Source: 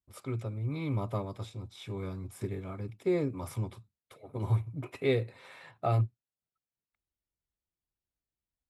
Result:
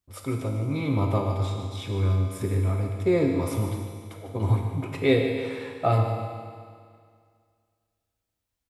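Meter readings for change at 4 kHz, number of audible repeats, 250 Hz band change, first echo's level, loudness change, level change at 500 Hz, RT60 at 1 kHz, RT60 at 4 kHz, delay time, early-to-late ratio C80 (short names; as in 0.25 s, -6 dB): +9.5 dB, 3, +9.0 dB, -10.5 dB, +8.0 dB, +8.0 dB, 2.1 s, 2.0 s, 0.149 s, 4.0 dB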